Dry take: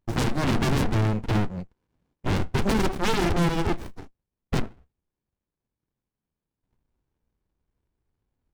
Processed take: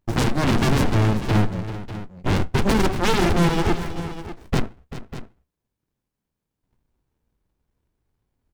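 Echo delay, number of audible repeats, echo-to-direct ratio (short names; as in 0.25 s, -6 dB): 0.39 s, 2, -10.5 dB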